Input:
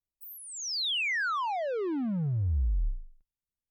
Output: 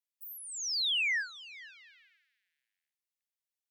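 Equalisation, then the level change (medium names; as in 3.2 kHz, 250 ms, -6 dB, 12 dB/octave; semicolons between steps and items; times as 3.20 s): steep high-pass 1.7 kHz 72 dB/octave; 0.0 dB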